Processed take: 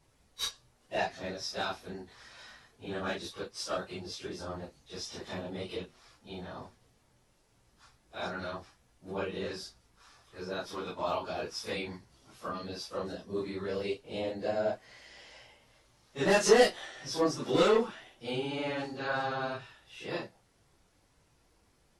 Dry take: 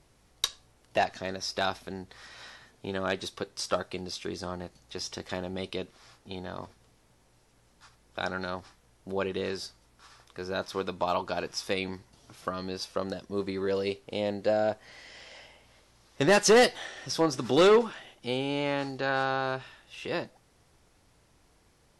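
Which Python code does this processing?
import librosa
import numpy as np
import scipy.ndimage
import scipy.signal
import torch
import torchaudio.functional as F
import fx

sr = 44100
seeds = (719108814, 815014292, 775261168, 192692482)

y = fx.phase_scramble(x, sr, seeds[0], window_ms=100)
y = y * librosa.db_to_amplitude(-4.0)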